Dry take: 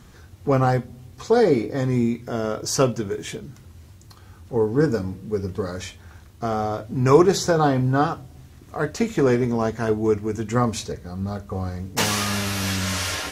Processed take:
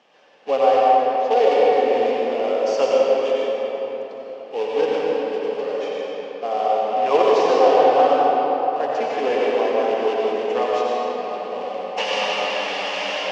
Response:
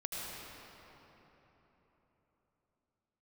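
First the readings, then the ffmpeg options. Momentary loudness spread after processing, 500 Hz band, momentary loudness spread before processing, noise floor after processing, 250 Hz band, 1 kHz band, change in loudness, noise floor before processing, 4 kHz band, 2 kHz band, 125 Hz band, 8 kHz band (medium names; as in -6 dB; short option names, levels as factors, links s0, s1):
12 LU, +5.0 dB, 13 LU, -35 dBFS, -8.0 dB, +8.0 dB, +2.5 dB, -47 dBFS, +2.0 dB, +1.5 dB, under -25 dB, under -10 dB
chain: -filter_complex "[0:a]acrusher=bits=3:mode=log:mix=0:aa=0.000001,highpass=f=320:w=0.5412,highpass=f=320:w=1.3066,equalizer=f=350:t=q:w=4:g=-8,equalizer=f=550:t=q:w=4:g=9,equalizer=f=780:t=q:w=4:g=8,equalizer=f=1400:t=q:w=4:g=-7,equalizer=f=2800:t=q:w=4:g=9,equalizer=f=4000:t=q:w=4:g=-6,lowpass=f=4800:w=0.5412,lowpass=f=4800:w=1.3066[s0];[1:a]atrim=start_sample=2205,asetrate=39690,aresample=44100[s1];[s0][s1]afir=irnorm=-1:irlink=0,volume=0.794"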